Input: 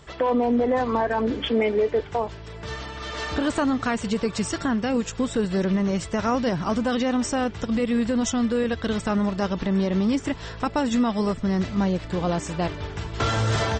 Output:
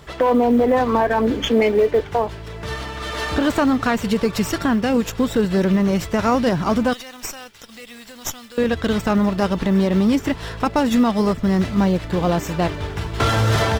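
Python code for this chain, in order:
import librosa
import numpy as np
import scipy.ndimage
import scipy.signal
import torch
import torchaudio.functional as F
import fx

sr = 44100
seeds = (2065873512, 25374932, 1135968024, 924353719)

y = fx.quant_companded(x, sr, bits=8)
y = fx.pre_emphasis(y, sr, coefficient=0.97, at=(6.93, 8.58))
y = fx.running_max(y, sr, window=3)
y = y * 10.0 ** (5.5 / 20.0)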